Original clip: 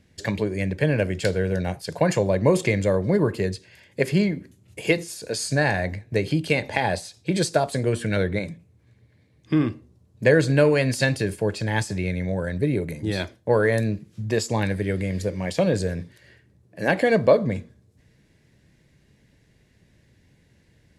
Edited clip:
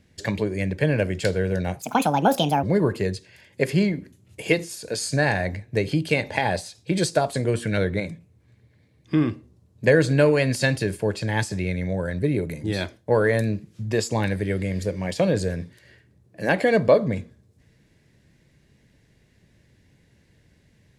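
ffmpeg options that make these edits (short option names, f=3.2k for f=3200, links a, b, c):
-filter_complex "[0:a]asplit=3[a][b][c];[a]atrim=end=1.824[d];[b]atrim=start=1.82:end=3.02,asetpts=PTS-STARTPTS,asetrate=65268,aresample=44100[e];[c]atrim=start=3.016[f];[d][e]acrossfade=d=0.004:c1=hsin:c2=hsin[g];[g][f]acrossfade=d=0.004:c1=hsin:c2=hsin"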